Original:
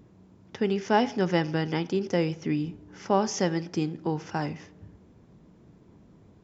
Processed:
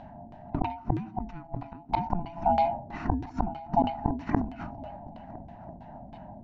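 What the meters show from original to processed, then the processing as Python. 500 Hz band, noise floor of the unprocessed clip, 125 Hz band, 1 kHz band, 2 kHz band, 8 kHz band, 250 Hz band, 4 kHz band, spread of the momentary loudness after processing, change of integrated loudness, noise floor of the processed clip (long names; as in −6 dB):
−6.5 dB, −56 dBFS, −2.5 dB, +3.0 dB, −10.0 dB, can't be measured, −4.5 dB, −12.5 dB, 19 LU, −3.0 dB, −48 dBFS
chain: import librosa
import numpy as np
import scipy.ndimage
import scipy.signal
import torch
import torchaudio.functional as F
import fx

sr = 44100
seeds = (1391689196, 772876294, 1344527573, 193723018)

p1 = fx.band_swap(x, sr, width_hz=500)
p2 = fx.low_shelf_res(p1, sr, hz=330.0, db=12.0, q=3.0)
p3 = fx.gate_flip(p2, sr, shuts_db=-18.0, range_db=-32)
p4 = p3 + fx.echo_swing(p3, sr, ms=1344, ratio=3, feedback_pct=39, wet_db=-20.5, dry=0)
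p5 = fx.filter_lfo_lowpass(p4, sr, shape='saw_down', hz=3.1, low_hz=350.0, high_hz=3400.0, q=1.2)
p6 = fx.sustainer(p5, sr, db_per_s=110.0)
y = p6 * 10.0 ** (8.5 / 20.0)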